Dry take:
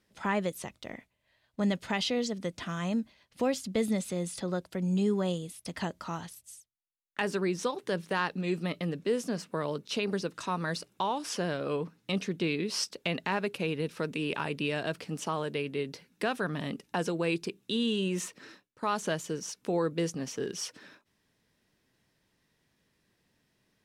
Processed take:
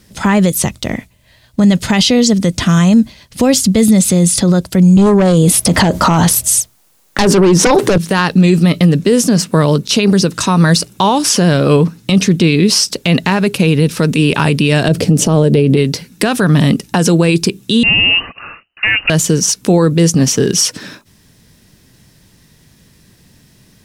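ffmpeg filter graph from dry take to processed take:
ffmpeg -i in.wav -filter_complex "[0:a]asettb=1/sr,asplit=3[link_01][link_02][link_03];[link_01]atrim=end=4.974[link_04];[link_02]atrim=start=4.97:end=7.98,asetpts=PTS-STARTPTS,afade=type=in:duration=0.004:curve=qsin,afade=type=out:start_time=3.006:duration=0.004:curve=qsin,equalizer=frequency=630:width_type=o:width=3:gain=11.5,aeval=exprs='0.398*sin(PI/2*2.82*val(0)/0.398)':channel_layout=same[link_05];[link_03]atrim=start=7.976[link_06];[link_04][link_05]acrossfade=duration=0.004:curve1=hsin:curve2=qsin[link_07];[link_07][link_06]acrossfade=duration=0.004:curve1=qsin:curve2=hsin,asettb=1/sr,asplit=3[link_08][link_09][link_10];[link_08]atrim=end=14.884[link_11];[link_09]atrim=start=14.88:end=15.77,asetpts=PTS-STARTPTS,afade=type=in:duration=0.004:curve=qsin,afade=type=out:start_time=0.886:duration=0.004:curve=qsin,lowshelf=frequency=750:width_type=q:width=1.5:gain=9,acompressor=threshold=-27dB:ratio=3:attack=3.2:release=140:knee=1:detection=peak[link_12];[link_10]atrim=start=15.766[link_13];[link_11][link_12]acrossfade=duration=0.004:curve1=hsin:curve2=qsin[link_14];[link_14][link_13]acrossfade=duration=0.004:curve1=qsin:curve2=hsin,asettb=1/sr,asplit=3[link_15][link_16][link_17];[link_15]atrim=end=17.834[link_18];[link_16]atrim=start=17.83:end=19.1,asetpts=PTS-STARTPTS,afade=type=in:duration=0.004:curve=qsin,afade=type=out:start_time=1.266:duration=0.004:curve=qsin,asoftclip=type=hard:threshold=-28dB,lowpass=frequency=2600:width_type=q:width=0.5098,lowpass=frequency=2600:width_type=q:width=0.6013,lowpass=frequency=2600:width_type=q:width=0.9,lowpass=frequency=2600:width_type=q:width=2.563,afreqshift=-3000[link_19];[link_17]atrim=start=19.096[link_20];[link_18][link_19]acrossfade=duration=0.004:curve1=hsin:curve2=qsin[link_21];[link_21][link_20]acrossfade=duration=0.004:curve1=qsin:curve2=hsin,bass=frequency=250:gain=11,treble=frequency=4000:gain=9,alimiter=level_in=20.5dB:limit=-1dB:release=50:level=0:latency=1,volume=-1dB" out.wav

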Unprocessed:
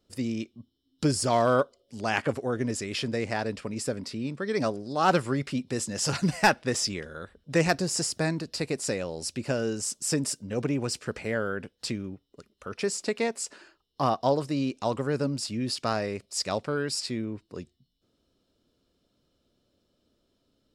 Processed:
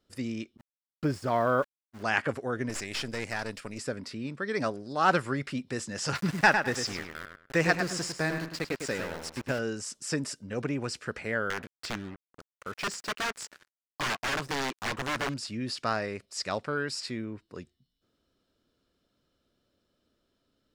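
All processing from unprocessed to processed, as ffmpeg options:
ffmpeg -i in.wav -filter_complex "[0:a]asettb=1/sr,asplit=3[link_01][link_02][link_03];[link_01]atrim=end=0.574[link_04];[link_02]atrim=start=0.57:end=2.03,asetpts=PTS-STARTPTS,afade=type=in:duration=0.004:curve=qsin,afade=type=out:start_time=1.456:duration=0.004:curve=qsin,lowpass=frequency=1600:poles=1,aeval=exprs='val(0)*gte(abs(val(0)),0.00794)':channel_layout=same,agate=range=-33dB:threshold=-38dB:ratio=3:release=100:detection=peak[link_05];[link_03]atrim=start=2.026[link_06];[link_04][link_05]acrossfade=duration=0.004:curve1=hsin:curve2=qsin[link_07];[link_07][link_06]acrossfade=duration=0.004:curve1=qsin:curve2=hsin,asettb=1/sr,asplit=3[link_08][link_09][link_10];[link_08]atrim=end=2.694[link_11];[link_09]atrim=start=2.69:end=3.78,asetpts=PTS-STARTPTS,afade=type=in:duration=0.004:curve=qsin,afade=type=out:start_time=1.086:duration=0.004:curve=qsin,aemphasis=mode=production:type=75kf,aeval=exprs='(tanh(15.8*val(0)+0.75)-tanh(0.75))/15.8':channel_layout=same[link_12];[link_10]atrim=start=3.776[link_13];[link_11][link_12]acrossfade=duration=0.004:curve1=hsin:curve2=qsin[link_14];[link_14][link_13]acrossfade=duration=0.004:curve1=qsin:curve2=hsin,asettb=1/sr,asplit=3[link_15][link_16][link_17];[link_15]atrim=end=6.154[link_18];[link_16]atrim=start=6.15:end=9.59,asetpts=PTS-STARTPTS,afade=type=in:duration=0.004:curve=qsin,afade=type=out:start_time=3.436:duration=0.004:curve=qsin,aeval=exprs='val(0)*gte(abs(val(0)),0.0211)':channel_layout=same,asplit=2[link_19][link_20];[link_20]adelay=103,lowpass=frequency=3600:poles=1,volume=-6dB,asplit=2[link_21][link_22];[link_22]adelay=103,lowpass=frequency=3600:poles=1,volume=0.25,asplit=2[link_23][link_24];[link_24]adelay=103,lowpass=frequency=3600:poles=1,volume=0.25[link_25];[link_19][link_21][link_23][link_25]amix=inputs=4:normalize=0,atrim=end_sample=151704[link_26];[link_17]atrim=start=9.586[link_27];[link_18][link_26]acrossfade=duration=0.004:curve1=hsin:curve2=qsin[link_28];[link_28][link_27]acrossfade=duration=0.004:curve1=qsin:curve2=hsin,asettb=1/sr,asplit=3[link_29][link_30][link_31];[link_29]atrim=end=11.504[link_32];[link_30]atrim=start=11.5:end=15.34,asetpts=PTS-STARTPTS,afade=type=in:duration=0.004:curve=qsin,afade=type=out:start_time=3.836:duration=0.004:curve=qsin,aeval=exprs='(mod(15*val(0)+1,2)-1)/15':channel_layout=same,acrusher=bits=6:mix=0:aa=0.5[link_33];[link_31]atrim=start=15.336[link_34];[link_32][link_33]acrossfade=duration=0.004:curve1=hsin:curve2=qsin[link_35];[link_35][link_34]acrossfade=duration=0.004:curve1=qsin:curve2=hsin,acrossover=split=7700[link_36][link_37];[link_37]acompressor=threshold=-46dB:ratio=4:attack=1:release=60[link_38];[link_36][link_38]amix=inputs=2:normalize=0,equalizer=frequency=1600:width_type=o:width=1.2:gain=7,volume=-4dB" out.wav

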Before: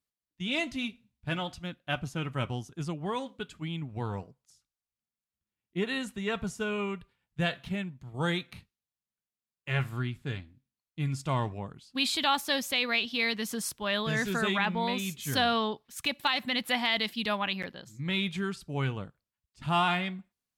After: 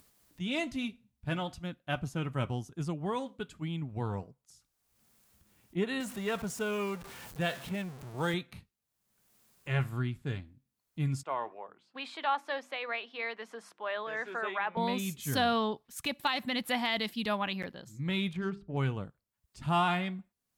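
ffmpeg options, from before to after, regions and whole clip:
ffmpeg -i in.wav -filter_complex "[0:a]asettb=1/sr,asplit=3[link_01][link_02][link_03];[link_01]atrim=end=6.004[link_04];[link_02]atrim=start=6:end=8.34,asetpts=PTS-STARTPTS,afade=type=in:duration=0.004:curve=qsin,afade=type=out:start_time=2.336:duration=0.004:curve=qsin,aeval=exprs='val(0)+0.5*0.0119*sgn(val(0))':channel_layout=same,lowshelf=frequency=170:gain=-10[link_05];[link_03]atrim=start=8.336[link_06];[link_04][link_05]acrossfade=duration=0.004:curve1=hsin:curve2=qsin[link_07];[link_07][link_06]acrossfade=duration=0.004:curve1=qsin:curve2=hsin,asettb=1/sr,asplit=3[link_08][link_09][link_10];[link_08]atrim=end=11.234[link_11];[link_09]atrim=start=11.23:end=14.77,asetpts=PTS-STARTPTS,afade=type=in:duration=0.004:curve=qsin,afade=type=out:start_time=3.536:duration=0.004:curve=qsin,highpass=230,lowpass=7500,acrossover=split=420 2500:gain=0.1 1 0.126[link_12][link_13][link_14];[link_12][link_13][link_14]amix=inputs=3:normalize=0,bandreject=frequency=50:width_type=h:width=6,bandreject=frequency=100:width_type=h:width=6,bandreject=frequency=150:width_type=h:width=6,bandreject=frequency=200:width_type=h:width=6,bandreject=frequency=250:width_type=h:width=6,bandreject=frequency=300:width_type=h:width=6,bandreject=frequency=350:width_type=h:width=6[link_15];[link_10]atrim=start=14.766[link_16];[link_11][link_15]acrossfade=duration=0.004:curve1=hsin:curve2=qsin[link_17];[link_17][link_16]acrossfade=duration=0.004:curve1=qsin:curve2=hsin,asettb=1/sr,asplit=3[link_18][link_19][link_20];[link_18]atrim=end=18.334[link_21];[link_19]atrim=start=18.33:end=18.77,asetpts=PTS-STARTPTS,afade=type=in:duration=0.004:curve=qsin,afade=type=out:start_time=0.436:duration=0.004:curve=qsin,adynamicsmooth=sensitivity=4.5:basefreq=1600,bandreject=frequency=50:width_type=h:width=6,bandreject=frequency=100:width_type=h:width=6,bandreject=frequency=150:width_type=h:width=6,bandreject=frequency=200:width_type=h:width=6,bandreject=frequency=250:width_type=h:width=6,bandreject=frequency=300:width_type=h:width=6,bandreject=frequency=350:width_type=h:width=6,bandreject=frequency=400:width_type=h:width=6[link_22];[link_20]atrim=start=18.766[link_23];[link_21][link_22]acrossfade=duration=0.004:curve1=hsin:curve2=qsin[link_24];[link_24][link_23]acrossfade=duration=0.004:curve1=qsin:curve2=hsin,equalizer=frequency=3100:width=0.56:gain=-5,acompressor=mode=upward:threshold=-44dB:ratio=2.5" out.wav

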